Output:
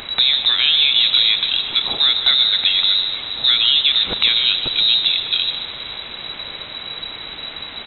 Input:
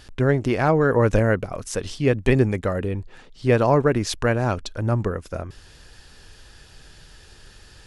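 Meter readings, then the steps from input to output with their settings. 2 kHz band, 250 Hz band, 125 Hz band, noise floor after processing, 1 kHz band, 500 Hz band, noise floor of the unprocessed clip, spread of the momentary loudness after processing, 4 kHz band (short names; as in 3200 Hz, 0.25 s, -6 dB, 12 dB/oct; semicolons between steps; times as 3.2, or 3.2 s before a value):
+4.5 dB, -17.5 dB, under -20 dB, -34 dBFS, -6.5 dB, -18.5 dB, -49 dBFS, 16 LU, +28.5 dB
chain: in parallel at +1 dB: limiter -13 dBFS, peak gain reduction 9 dB; on the sum: compressor 3:1, threshold -20 dBFS, peak gain reduction 9 dB; requantised 6-bit, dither triangular; on a send: echo 0.149 s -11.5 dB; on the sum: Schroeder reverb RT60 4 s, combs from 27 ms, DRR 10.5 dB; inverted band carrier 3900 Hz; gain +5 dB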